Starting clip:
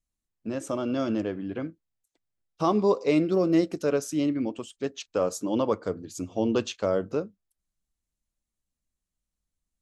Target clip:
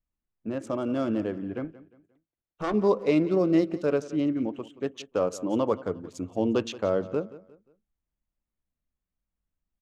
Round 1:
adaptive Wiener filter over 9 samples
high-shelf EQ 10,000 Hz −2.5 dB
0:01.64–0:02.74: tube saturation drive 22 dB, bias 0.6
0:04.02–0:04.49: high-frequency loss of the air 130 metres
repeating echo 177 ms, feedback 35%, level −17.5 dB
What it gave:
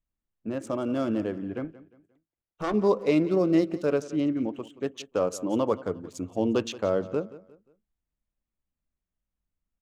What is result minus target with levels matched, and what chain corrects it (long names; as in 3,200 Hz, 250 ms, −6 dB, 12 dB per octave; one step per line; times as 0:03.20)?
8,000 Hz band +3.0 dB
adaptive Wiener filter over 9 samples
high-shelf EQ 10,000 Hz −13 dB
0:01.64–0:02.74: tube saturation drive 22 dB, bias 0.6
0:04.02–0:04.49: high-frequency loss of the air 130 metres
repeating echo 177 ms, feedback 35%, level −17.5 dB